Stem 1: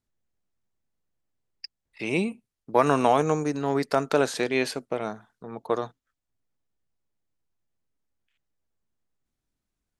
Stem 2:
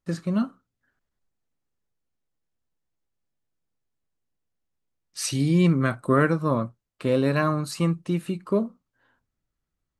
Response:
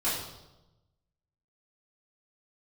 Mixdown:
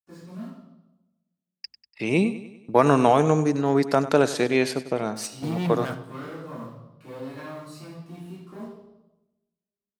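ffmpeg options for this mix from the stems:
-filter_complex "[0:a]agate=range=-33dB:threshold=-54dB:ratio=3:detection=peak,lowshelf=f=290:g=8.5,volume=1dB,asplit=3[a][b][c];[b]volume=-14.5dB[d];[1:a]asoftclip=type=hard:threshold=-21dB,acrusher=bits=6:mix=0:aa=0.5,volume=-4.5dB,asplit=2[e][f];[f]volume=-16.5dB[g];[c]apad=whole_len=440857[h];[e][h]sidechaingate=range=-33dB:threshold=-42dB:ratio=16:detection=peak[i];[2:a]atrim=start_sample=2205[j];[g][j]afir=irnorm=-1:irlink=0[k];[d]aecho=0:1:97|194|291|388|485|582|679:1|0.51|0.26|0.133|0.0677|0.0345|0.0176[l];[a][i][k][l]amix=inputs=4:normalize=0,highpass=50,lowshelf=f=140:g=-3"

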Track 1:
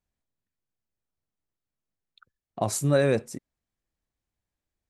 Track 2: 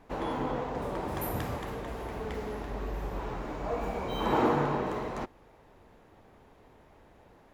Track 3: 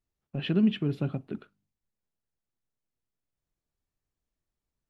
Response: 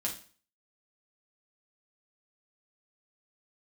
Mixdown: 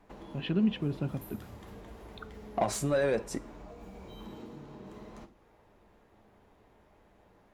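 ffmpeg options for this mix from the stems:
-filter_complex "[0:a]acompressor=threshold=-29dB:ratio=6,asplit=2[a][b];[b]highpass=f=720:p=1,volume=20dB,asoftclip=type=tanh:threshold=-14dB[c];[a][c]amix=inputs=2:normalize=0,lowpass=f=2k:p=1,volume=-6dB,volume=-3dB,asplit=2[d][e];[e]volume=-14dB[f];[1:a]acrossover=split=360|3000[g][h][i];[h]acompressor=threshold=-42dB:ratio=6[j];[g][j][i]amix=inputs=3:normalize=0,acompressor=threshold=-41dB:ratio=3,volume=-9dB,asplit=2[k][l];[l]volume=-4.5dB[m];[2:a]volume=-3.5dB[n];[3:a]atrim=start_sample=2205[o];[f][m]amix=inputs=2:normalize=0[p];[p][o]afir=irnorm=-1:irlink=0[q];[d][k][n][q]amix=inputs=4:normalize=0"

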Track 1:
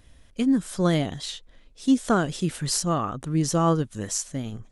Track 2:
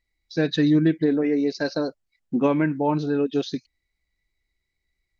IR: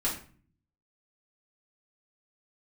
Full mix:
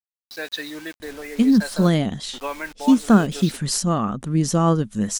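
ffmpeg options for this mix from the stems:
-filter_complex "[0:a]equalizer=f=210:t=o:w=0.32:g=12.5,adelay=1000,volume=2dB[a];[1:a]highpass=870,acrusher=bits=6:mix=0:aa=0.000001,volume=0.5dB[b];[a][b]amix=inputs=2:normalize=0"

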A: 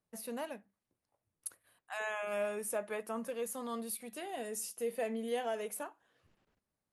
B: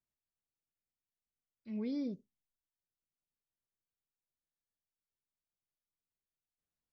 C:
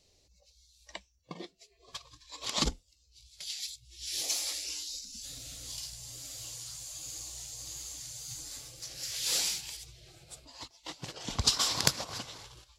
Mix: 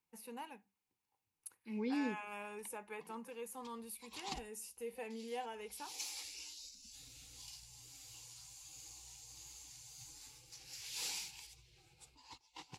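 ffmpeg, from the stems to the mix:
-filter_complex "[0:a]volume=-8.5dB,asplit=2[a][b];[1:a]highpass=260,volume=2.5dB[c];[2:a]adelay=1700,volume=-12dB[d];[b]apad=whole_len=638948[e];[d][e]sidechaincompress=threshold=-53dB:ratio=8:attack=23:release=204[f];[a][c][f]amix=inputs=3:normalize=0,superequalizer=8b=0.282:9b=2.24:12b=1.78"

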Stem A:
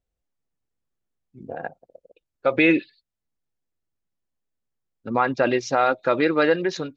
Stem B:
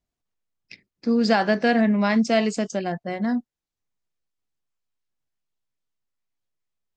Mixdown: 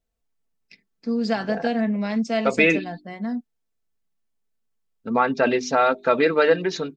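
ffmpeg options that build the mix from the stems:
-filter_complex "[0:a]bandreject=f=50.13:t=h:w=4,bandreject=f=100.26:t=h:w=4,bandreject=f=150.39:t=h:w=4,bandreject=f=200.52:t=h:w=4,bandreject=f=250.65:t=h:w=4,bandreject=f=300.78:t=h:w=4,bandreject=f=350.91:t=h:w=4,bandreject=f=401.04:t=h:w=4,volume=0.5dB[a];[1:a]volume=-7dB[b];[a][b]amix=inputs=2:normalize=0,aecho=1:1:4.5:0.52"

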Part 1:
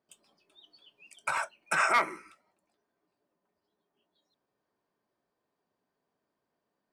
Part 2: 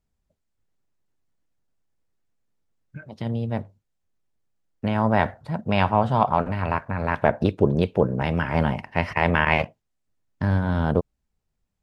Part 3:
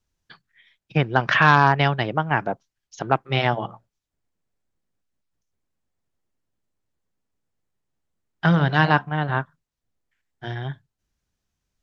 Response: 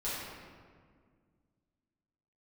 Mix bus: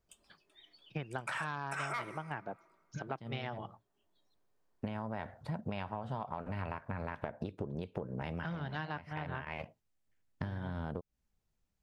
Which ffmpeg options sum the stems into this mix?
-filter_complex "[0:a]volume=-3.5dB,asplit=2[a][b];[b]volume=-22.5dB[c];[1:a]acompressor=threshold=-23dB:ratio=6,volume=-4dB[d];[2:a]volume=-14dB,asplit=2[e][f];[f]apad=whole_len=521650[g];[d][g]sidechaincompress=threshold=-43dB:ratio=4:attack=37:release=454[h];[3:a]atrim=start_sample=2205[i];[c][i]afir=irnorm=-1:irlink=0[j];[a][h][e][j]amix=inputs=4:normalize=0,acompressor=threshold=-35dB:ratio=6"

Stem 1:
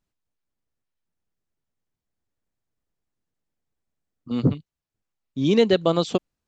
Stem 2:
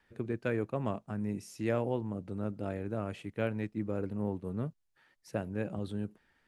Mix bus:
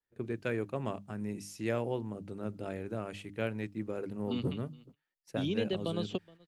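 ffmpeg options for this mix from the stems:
-filter_complex "[0:a]equalizer=f=2.9k:w=1.5:g=12.5,acrossover=split=180|710[a][b][c];[a]acompressor=threshold=-32dB:ratio=4[d];[b]acompressor=threshold=-30dB:ratio=4[e];[c]acompressor=threshold=-39dB:ratio=4[f];[d][e][f]amix=inputs=3:normalize=0,volume=-6.5dB,asplit=2[g][h];[h]volume=-22.5dB[i];[1:a]bandreject=f=50:t=h:w=6,bandreject=f=100:t=h:w=6,bandreject=f=150:t=h:w=6,bandreject=f=200:t=h:w=6,bandreject=f=250:t=h:w=6,bandreject=f=300:t=h:w=6,adynamicequalizer=threshold=0.00224:dfrequency=2000:dqfactor=0.7:tfrequency=2000:tqfactor=0.7:attack=5:release=100:ratio=0.375:range=3:mode=boostabove:tftype=highshelf,volume=-2dB[j];[i]aecho=0:1:421:1[k];[g][j][k]amix=inputs=3:normalize=0,agate=range=-21dB:threshold=-55dB:ratio=16:detection=peak,equalizer=f=390:w=6.1:g=2.5"

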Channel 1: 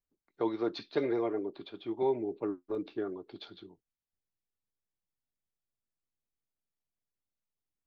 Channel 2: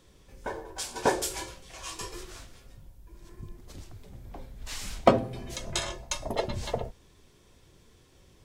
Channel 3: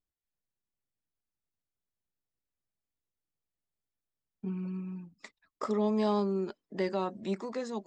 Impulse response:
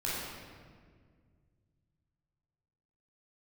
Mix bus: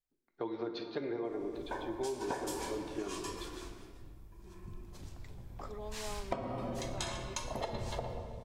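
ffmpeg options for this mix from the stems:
-filter_complex "[0:a]volume=-4dB,asplit=2[a][b];[b]volume=-11dB[c];[1:a]equalizer=f=990:w=2:g=4,adelay=1250,volume=-8dB,asplit=2[d][e];[e]volume=-8.5dB[f];[2:a]highpass=430,volume=-12dB[g];[3:a]atrim=start_sample=2205[h];[c][f]amix=inputs=2:normalize=0[i];[i][h]afir=irnorm=-1:irlink=0[j];[a][d][g][j]amix=inputs=4:normalize=0,acompressor=threshold=-33dB:ratio=10"

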